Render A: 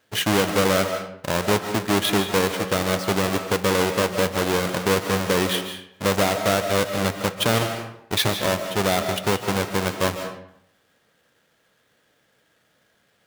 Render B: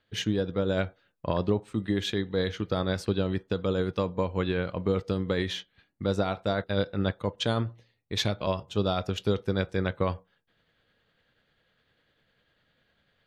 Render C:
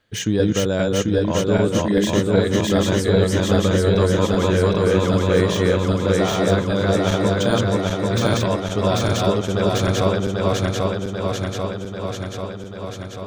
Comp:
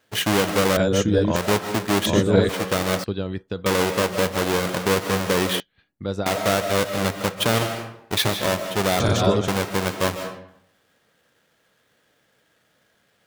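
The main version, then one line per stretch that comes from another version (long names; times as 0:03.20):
A
0:00.77–0:01.36: punch in from C
0:02.06–0:02.49: punch in from C
0:03.04–0:03.66: punch in from B
0:05.60–0:06.26: punch in from B
0:09.00–0:09.48: punch in from C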